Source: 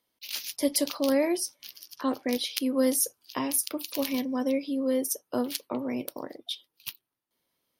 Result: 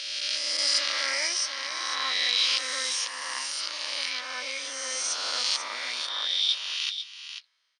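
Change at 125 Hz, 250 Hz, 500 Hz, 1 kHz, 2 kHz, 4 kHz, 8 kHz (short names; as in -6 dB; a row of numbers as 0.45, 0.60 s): under -30 dB, -27.0 dB, -13.5 dB, +2.0 dB, +11.0 dB, +12.0 dB, +2.0 dB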